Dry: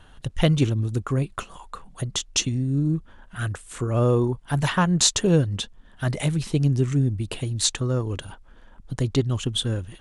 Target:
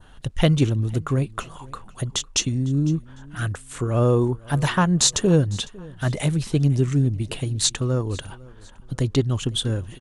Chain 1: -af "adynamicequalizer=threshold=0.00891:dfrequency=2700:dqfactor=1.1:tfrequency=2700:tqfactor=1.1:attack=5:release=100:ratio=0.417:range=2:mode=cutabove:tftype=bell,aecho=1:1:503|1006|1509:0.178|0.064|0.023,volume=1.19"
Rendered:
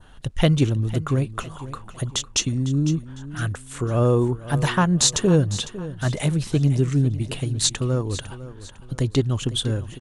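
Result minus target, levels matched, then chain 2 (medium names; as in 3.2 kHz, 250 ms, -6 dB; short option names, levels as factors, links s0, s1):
echo-to-direct +7.5 dB
-af "adynamicequalizer=threshold=0.00891:dfrequency=2700:dqfactor=1.1:tfrequency=2700:tqfactor=1.1:attack=5:release=100:ratio=0.417:range=2:mode=cutabove:tftype=bell,aecho=1:1:503|1006:0.075|0.027,volume=1.19"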